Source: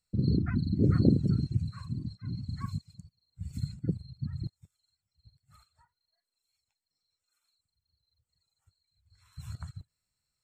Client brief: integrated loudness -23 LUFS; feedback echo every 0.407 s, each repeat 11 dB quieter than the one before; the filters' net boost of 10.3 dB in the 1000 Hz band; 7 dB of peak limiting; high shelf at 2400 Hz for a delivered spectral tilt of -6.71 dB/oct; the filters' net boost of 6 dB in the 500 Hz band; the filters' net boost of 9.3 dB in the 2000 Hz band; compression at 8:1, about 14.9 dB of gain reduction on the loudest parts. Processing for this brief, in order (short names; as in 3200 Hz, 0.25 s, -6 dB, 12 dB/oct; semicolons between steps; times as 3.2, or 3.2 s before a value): bell 500 Hz +6.5 dB; bell 1000 Hz +8.5 dB; bell 2000 Hz +6.5 dB; high shelf 2400 Hz +4 dB; compressor 8:1, threshold -30 dBFS; limiter -27 dBFS; feedback echo 0.407 s, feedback 28%, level -11 dB; gain +16.5 dB